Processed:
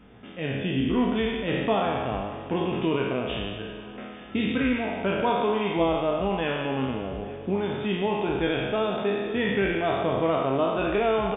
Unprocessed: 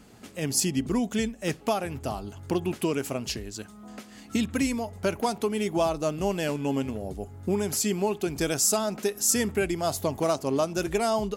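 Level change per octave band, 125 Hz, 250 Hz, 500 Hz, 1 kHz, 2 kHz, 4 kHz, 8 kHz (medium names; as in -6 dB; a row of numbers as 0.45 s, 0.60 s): +1.5 dB, +1.5 dB, +2.5 dB, +4.0 dB, +5.0 dB, +0.5 dB, under -40 dB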